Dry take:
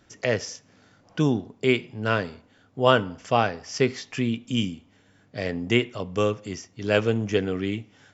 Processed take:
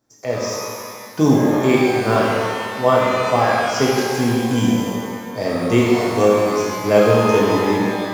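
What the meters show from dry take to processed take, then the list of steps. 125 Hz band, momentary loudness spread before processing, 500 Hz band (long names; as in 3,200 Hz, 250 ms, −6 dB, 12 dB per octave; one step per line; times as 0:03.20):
+6.5 dB, 14 LU, +9.5 dB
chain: mu-law and A-law mismatch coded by A
flat-topped bell 2,300 Hz −9.5 dB
notch filter 2,900 Hz, Q 10
automatic gain control gain up to 10 dB
low-shelf EQ 140 Hz −10 dB
reverb with rising layers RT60 2 s, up +12 semitones, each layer −8 dB, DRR −5.5 dB
level −1.5 dB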